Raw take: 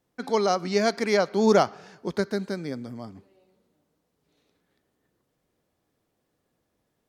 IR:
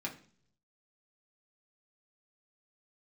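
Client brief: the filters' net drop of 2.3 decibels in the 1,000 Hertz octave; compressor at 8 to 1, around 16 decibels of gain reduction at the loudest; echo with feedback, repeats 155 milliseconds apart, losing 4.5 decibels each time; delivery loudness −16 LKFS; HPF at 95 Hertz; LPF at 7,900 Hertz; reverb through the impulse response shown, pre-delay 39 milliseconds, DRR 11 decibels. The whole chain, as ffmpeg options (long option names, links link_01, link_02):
-filter_complex "[0:a]highpass=95,lowpass=7900,equalizer=frequency=1000:width_type=o:gain=-3.5,acompressor=threshold=-32dB:ratio=8,aecho=1:1:155|310|465|620|775|930|1085|1240|1395:0.596|0.357|0.214|0.129|0.0772|0.0463|0.0278|0.0167|0.01,asplit=2[link_01][link_02];[1:a]atrim=start_sample=2205,adelay=39[link_03];[link_02][link_03]afir=irnorm=-1:irlink=0,volume=-12.5dB[link_04];[link_01][link_04]amix=inputs=2:normalize=0,volume=19.5dB"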